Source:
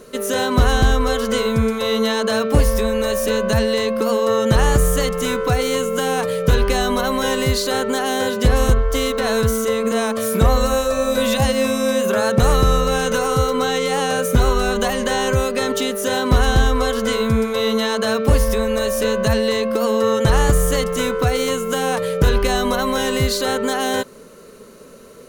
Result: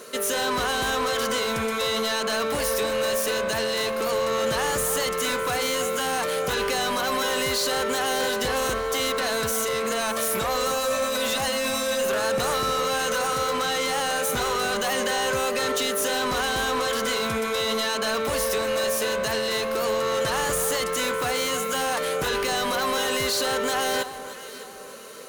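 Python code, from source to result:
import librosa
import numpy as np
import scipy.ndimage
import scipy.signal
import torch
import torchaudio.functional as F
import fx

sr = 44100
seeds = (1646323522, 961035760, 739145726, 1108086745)

p1 = fx.highpass(x, sr, hz=900.0, slope=6)
p2 = fx.over_compress(p1, sr, threshold_db=-26.0, ratio=-1.0)
p3 = p1 + F.gain(torch.from_numpy(p2), 0.0).numpy()
p4 = 10.0 ** (-20.0 / 20.0) * np.tanh(p3 / 10.0 ** (-20.0 / 20.0))
p5 = fx.echo_alternate(p4, sr, ms=303, hz=1400.0, feedback_pct=61, wet_db=-10.5)
y = F.gain(torch.from_numpy(p5), -1.5).numpy()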